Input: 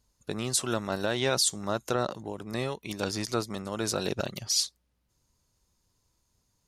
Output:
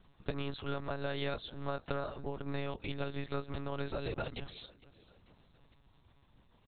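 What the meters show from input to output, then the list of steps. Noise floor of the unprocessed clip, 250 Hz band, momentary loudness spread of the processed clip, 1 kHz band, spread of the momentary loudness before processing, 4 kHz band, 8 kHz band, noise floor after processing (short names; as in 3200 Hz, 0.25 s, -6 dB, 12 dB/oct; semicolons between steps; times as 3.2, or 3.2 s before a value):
-75 dBFS, -8.0 dB, 4 LU, -7.5 dB, 9 LU, -14.5 dB, under -40 dB, -67 dBFS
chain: compressor 4:1, threshold -45 dBFS, peak gain reduction 19 dB; feedback echo 0.451 s, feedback 42%, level -21 dB; monotone LPC vocoder at 8 kHz 140 Hz; gain +9.5 dB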